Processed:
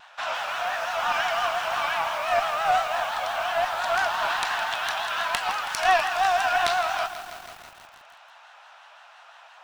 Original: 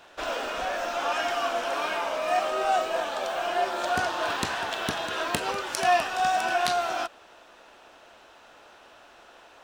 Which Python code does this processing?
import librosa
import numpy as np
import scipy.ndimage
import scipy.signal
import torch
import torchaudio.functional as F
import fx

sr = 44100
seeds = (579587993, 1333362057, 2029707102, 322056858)

y = scipy.signal.sosfilt(scipy.signal.butter(6, 720.0, 'highpass', fs=sr, output='sos'), x)
y = fx.high_shelf(y, sr, hz=6400.0, db=-11.5)
y = fx.cheby_harmonics(y, sr, harmonics=(2,), levels_db=(-11,), full_scale_db=-11.5)
y = fx.vibrato(y, sr, rate_hz=5.8, depth_cents=93.0)
y = fx.echo_crushed(y, sr, ms=162, feedback_pct=80, bits=7, wet_db=-12.5)
y = y * 10.0 ** (4.5 / 20.0)